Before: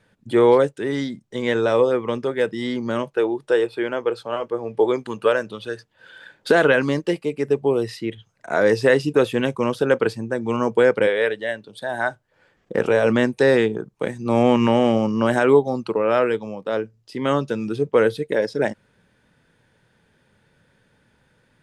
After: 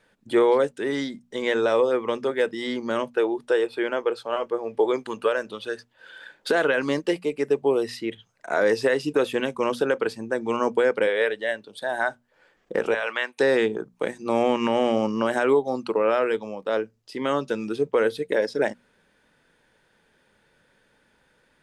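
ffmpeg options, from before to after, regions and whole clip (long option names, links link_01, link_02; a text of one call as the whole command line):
ffmpeg -i in.wav -filter_complex "[0:a]asettb=1/sr,asplit=3[link_01][link_02][link_03];[link_01]atrim=end=12.944[link_04];[link_02]atrim=start=12.94:end=13.38,asetpts=PTS-STARTPTS,afade=type=in:duration=0.004:curve=qsin,afade=type=out:start_time=0.436:duration=0.004:curve=qsin,highpass=1000,highshelf=frequency=4100:width_type=q:width=1.5:gain=-8[link_05];[link_03]atrim=start=13.376[link_06];[link_04][link_05]acrossfade=duration=0.004:curve1=hsin:curve2=qsin[link_07];[link_07][link_06]acrossfade=duration=0.004:curve1=qsin:curve2=hsin,equalizer=frequency=110:width=0.81:gain=-11,bandreject=frequency=60:width_type=h:width=6,bandreject=frequency=120:width_type=h:width=6,bandreject=frequency=180:width_type=h:width=6,bandreject=frequency=240:width_type=h:width=6,alimiter=limit=-11dB:level=0:latency=1:release=201" out.wav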